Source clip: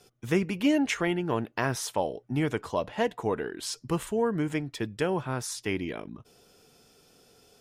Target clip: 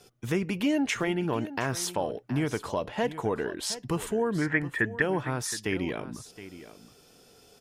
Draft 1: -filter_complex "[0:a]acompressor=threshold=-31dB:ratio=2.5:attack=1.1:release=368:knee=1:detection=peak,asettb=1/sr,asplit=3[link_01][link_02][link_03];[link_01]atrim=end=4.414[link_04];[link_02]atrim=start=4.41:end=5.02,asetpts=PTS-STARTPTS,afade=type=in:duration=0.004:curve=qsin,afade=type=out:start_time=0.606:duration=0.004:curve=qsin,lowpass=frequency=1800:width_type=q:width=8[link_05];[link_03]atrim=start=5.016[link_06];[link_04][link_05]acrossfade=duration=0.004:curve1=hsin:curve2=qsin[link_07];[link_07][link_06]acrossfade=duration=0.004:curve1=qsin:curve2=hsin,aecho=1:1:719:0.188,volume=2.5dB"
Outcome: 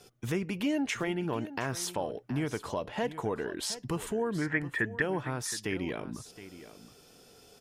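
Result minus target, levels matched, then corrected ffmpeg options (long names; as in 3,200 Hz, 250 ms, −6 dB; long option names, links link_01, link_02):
downward compressor: peak gain reduction +4 dB
-filter_complex "[0:a]acompressor=threshold=-24.5dB:ratio=2.5:attack=1.1:release=368:knee=1:detection=peak,asettb=1/sr,asplit=3[link_01][link_02][link_03];[link_01]atrim=end=4.414[link_04];[link_02]atrim=start=4.41:end=5.02,asetpts=PTS-STARTPTS,afade=type=in:duration=0.004:curve=qsin,afade=type=out:start_time=0.606:duration=0.004:curve=qsin,lowpass=frequency=1800:width_type=q:width=8[link_05];[link_03]atrim=start=5.016[link_06];[link_04][link_05]acrossfade=duration=0.004:curve1=hsin:curve2=qsin[link_07];[link_07][link_06]acrossfade=duration=0.004:curve1=qsin:curve2=hsin,aecho=1:1:719:0.188,volume=2.5dB"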